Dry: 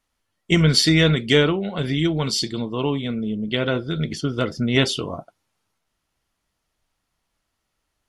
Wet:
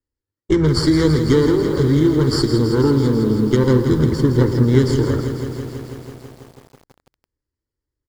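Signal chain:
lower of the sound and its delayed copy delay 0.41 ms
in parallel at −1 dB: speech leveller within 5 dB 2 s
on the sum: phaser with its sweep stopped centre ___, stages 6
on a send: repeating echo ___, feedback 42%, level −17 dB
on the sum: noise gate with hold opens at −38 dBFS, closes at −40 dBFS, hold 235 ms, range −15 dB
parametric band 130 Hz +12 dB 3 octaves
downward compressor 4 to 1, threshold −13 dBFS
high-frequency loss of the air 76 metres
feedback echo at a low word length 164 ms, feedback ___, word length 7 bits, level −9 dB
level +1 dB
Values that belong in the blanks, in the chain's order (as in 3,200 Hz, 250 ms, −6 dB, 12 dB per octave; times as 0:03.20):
690 Hz, 113 ms, 80%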